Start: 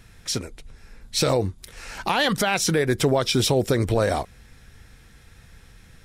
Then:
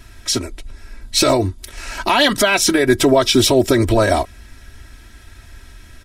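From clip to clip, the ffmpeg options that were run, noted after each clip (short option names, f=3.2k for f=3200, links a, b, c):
-af "aecho=1:1:3.1:0.89,volume=5.5dB"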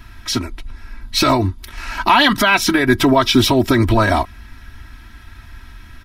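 -af "equalizer=f=250:t=o:w=1:g=3,equalizer=f=500:t=o:w=1:g=-12,equalizer=f=1k:t=o:w=1:g=6,equalizer=f=8k:t=o:w=1:g=-12,volume=2.5dB"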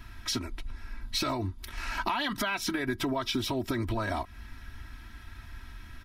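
-af "acompressor=threshold=-21dB:ratio=6,volume=-7dB"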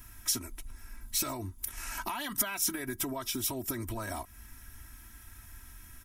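-af "aexciter=amount=10.5:drive=2.3:freq=6.2k,volume=-6.5dB"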